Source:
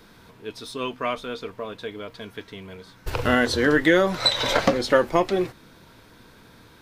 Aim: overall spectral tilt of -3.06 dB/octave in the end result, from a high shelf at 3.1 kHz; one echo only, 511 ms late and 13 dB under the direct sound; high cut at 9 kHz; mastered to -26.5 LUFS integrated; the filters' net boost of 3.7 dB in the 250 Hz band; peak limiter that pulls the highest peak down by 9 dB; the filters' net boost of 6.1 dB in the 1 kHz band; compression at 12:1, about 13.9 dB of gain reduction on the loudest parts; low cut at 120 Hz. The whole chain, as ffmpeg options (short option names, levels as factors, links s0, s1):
-af "highpass=120,lowpass=9000,equalizer=f=250:t=o:g=4.5,equalizer=f=1000:t=o:g=8.5,highshelf=f=3100:g=-6.5,acompressor=threshold=0.0631:ratio=12,alimiter=limit=0.1:level=0:latency=1,aecho=1:1:511:0.224,volume=2"